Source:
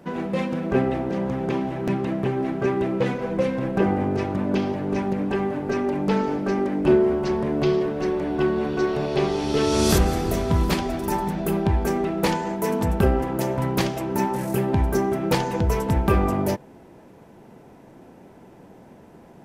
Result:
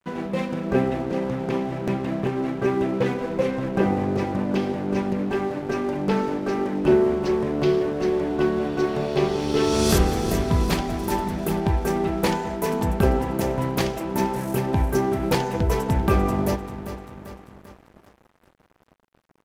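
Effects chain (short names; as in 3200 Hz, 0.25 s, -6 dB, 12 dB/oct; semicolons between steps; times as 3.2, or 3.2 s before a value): feedback echo 0.393 s, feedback 59%, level -11.5 dB; crossover distortion -41.5 dBFS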